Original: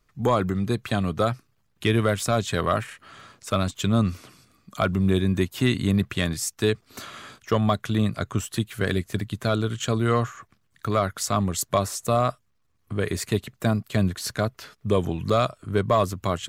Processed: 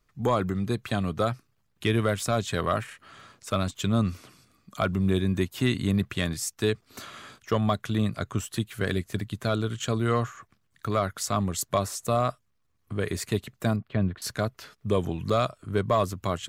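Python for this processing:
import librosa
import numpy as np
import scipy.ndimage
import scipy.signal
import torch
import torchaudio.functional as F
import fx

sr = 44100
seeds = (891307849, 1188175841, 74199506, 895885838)

y = fx.air_absorb(x, sr, metres=400.0, at=(13.76, 14.22))
y = F.gain(torch.from_numpy(y), -3.0).numpy()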